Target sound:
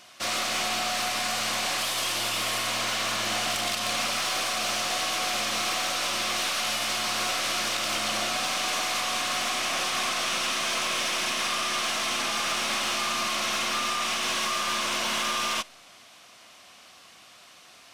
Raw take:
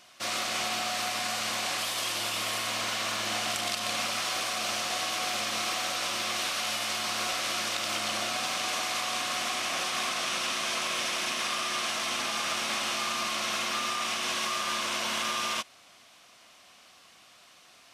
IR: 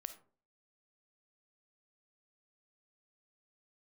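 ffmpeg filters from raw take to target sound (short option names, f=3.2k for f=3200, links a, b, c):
-filter_complex "[0:a]aeval=exprs='0.188*(cos(1*acos(clip(val(0)/0.188,-1,1)))-cos(1*PI/2))+0.0335*(cos(2*acos(clip(val(0)/0.188,-1,1)))-cos(2*PI/2))+0.00841*(cos(3*acos(clip(val(0)/0.188,-1,1)))-cos(3*PI/2))+0.00531*(cos(6*acos(clip(val(0)/0.188,-1,1)))-cos(6*PI/2))+0.00266*(cos(8*acos(clip(val(0)/0.188,-1,1)))-cos(8*PI/2))':c=same,asoftclip=type=tanh:threshold=-25.5dB,asplit=2[a][b];[1:a]atrim=start_sample=2205[c];[b][c]afir=irnorm=-1:irlink=0,volume=-9.5dB[d];[a][d]amix=inputs=2:normalize=0,volume=4dB"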